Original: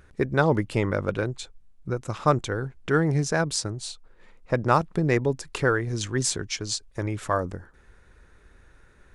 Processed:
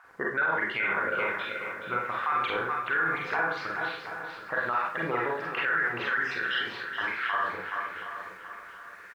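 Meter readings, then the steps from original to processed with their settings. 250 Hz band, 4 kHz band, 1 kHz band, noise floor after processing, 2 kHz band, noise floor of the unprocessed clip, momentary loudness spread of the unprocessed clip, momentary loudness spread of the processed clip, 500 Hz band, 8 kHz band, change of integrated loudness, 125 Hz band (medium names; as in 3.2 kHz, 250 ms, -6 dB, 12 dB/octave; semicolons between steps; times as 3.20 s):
-13.0 dB, -3.5 dB, 0.0 dB, -46 dBFS, +5.5 dB, -56 dBFS, 12 LU, 11 LU, -8.5 dB, under -25 dB, -3.0 dB, -20.5 dB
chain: random holes in the spectrogram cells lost 26%; low-pass 3 kHz 24 dB/octave; level-controlled noise filter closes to 2.1 kHz, open at -23 dBFS; treble shelf 2.1 kHz +10.5 dB; in parallel at +3 dB: compression, threshold -34 dBFS, peak gain reduction 19 dB; on the sum: added noise blue -53 dBFS; LFO band-pass saw up 1.2 Hz 980–2100 Hz; on a send: feedback delay 424 ms, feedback 35%, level -10 dB; on the sum: Schroeder reverb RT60 0.42 s, combs from 33 ms, DRR -2.5 dB; peak limiter -21.5 dBFS, peak gain reduction 12 dB; bit-crushed delay 726 ms, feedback 35%, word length 10-bit, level -11 dB; trim +3 dB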